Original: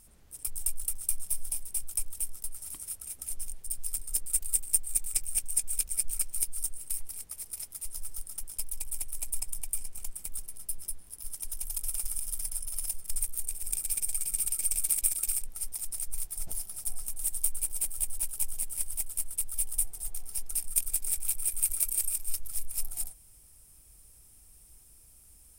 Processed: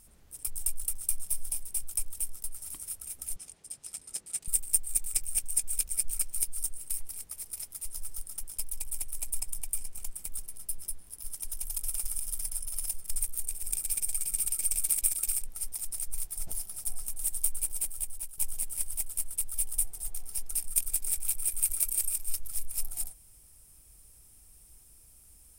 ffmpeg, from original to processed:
-filter_complex "[0:a]asettb=1/sr,asplit=3[s0][s1][s2];[s0]atrim=end=3.364[s3];[s1]atrim=start=3.36:end=4.48,asetpts=PTS-STARTPTS,afade=t=in:d=0.004:c=qsin,afade=t=out:st=1.116:d=0.004:c=qsin,highpass=130,lowpass=7200[s4];[s2]atrim=start=4.476[s5];[s3][s4]acrossfade=d=0.004:c1=hsin:c2=qsin[s6];[s6][s5]acrossfade=d=0.004:c1=qsin:c2=hsin,asplit=2[s7][s8];[s7]atrim=end=18.38,asetpts=PTS-STARTPTS,afade=t=out:st=17.71:d=0.67:silence=0.316228[s9];[s8]atrim=start=18.38,asetpts=PTS-STARTPTS,afade=t=in:d=0.004:c=hsin:silence=0.316228[s10];[s9][s10]concat=n=2:v=0:a=1"

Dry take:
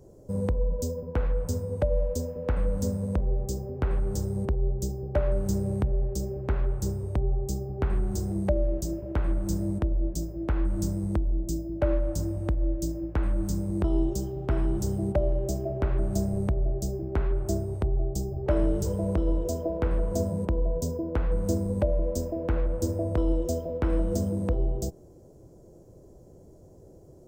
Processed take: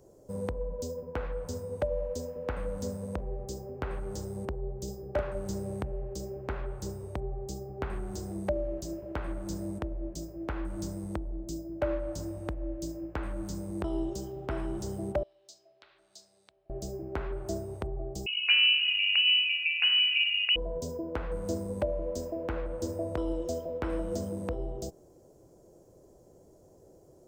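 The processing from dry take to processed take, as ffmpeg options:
-filter_complex "[0:a]asettb=1/sr,asplit=3[s0][s1][s2];[s0]atrim=end=4.844[s3];[s1]atrim=start=4.84:end=5.35,asetpts=PTS-STARTPTS,afade=t=in:d=0.004:c=qsin,afade=t=out:st=0.506:d=0.004:c=qsin,asplit=2[s4][s5];[s5]adelay=35,volume=0.531[s6];[s4][s6]amix=inputs=2:normalize=0,atrim=end_sample=22491[s7];[s2]atrim=start=5.346[s8];[s3][s7]acrossfade=d=0.004:c1=hsin:c2=qsin[s9];[s9][s8]acrossfade=d=0.004:c1=qsin:c2=hsin,asettb=1/sr,asplit=3[s10][s11][s12];[s10]atrim=end=15.234[s13];[s11]atrim=start=15.23:end=16.7,asetpts=PTS-STARTPTS,afade=t=in:d=0.004:c=qsin,afade=t=out:st=1.466:d=0.004:c=qsin,bandpass=f=4100:t=q:w=3.4[s14];[s12]atrim=start=16.696[s15];[s13][s14]acrossfade=d=0.004:c1=hsin:c2=qsin[s16];[s16][s15]acrossfade=d=0.004:c1=qsin:c2=hsin,asettb=1/sr,asplit=3[s17][s18][s19];[s17]atrim=end=18.264[s20];[s18]atrim=start=18.26:end=20.56,asetpts=PTS-STARTPTS,afade=t=in:d=0.004:c=qsin,afade=t=out:st=2.296:d=0.004:c=qsin,lowpass=f=2600:t=q:w=0.5098,lowpass=f=2600:t=q:w=0.6013,lowpass=f=2600:t=q:w=0.9,lowpass=f=2600:t=q:w=2.563,afreqshift=-3000[s21];[s19]atrim=start=20.556[s22];[s20][s21]acrossfade=d=0.004:c1=hsin:c2=qsin[s23];[s23][s22]acrossfade=d=0.004:c1=qsin:c2=hsin,acrossover=split=5900[s24][s25];[s25]acompressor=threshold=0.00316:ratio=4:attack=1:release=60[s26];[s24][s26]amix=inputs=2:normalize=0,lowshelf=f=290:g=-11.5"

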